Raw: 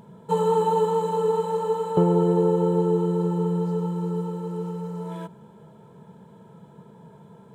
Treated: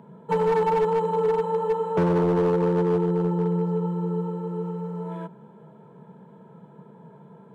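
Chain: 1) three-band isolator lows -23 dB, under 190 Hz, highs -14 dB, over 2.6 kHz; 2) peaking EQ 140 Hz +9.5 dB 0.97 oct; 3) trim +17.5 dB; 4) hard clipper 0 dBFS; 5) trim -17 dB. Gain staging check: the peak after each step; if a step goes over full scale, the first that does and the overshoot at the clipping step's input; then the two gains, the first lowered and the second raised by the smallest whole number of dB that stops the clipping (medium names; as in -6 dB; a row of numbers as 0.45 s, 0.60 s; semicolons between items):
-10.0 dBFS, -8.5 dBFS, +9.0 dBFS, 0.0 dBFS, -17.0 dBFS; step 3, 9.0 dB; step 3 +8.5 dB, step 5 -8 dB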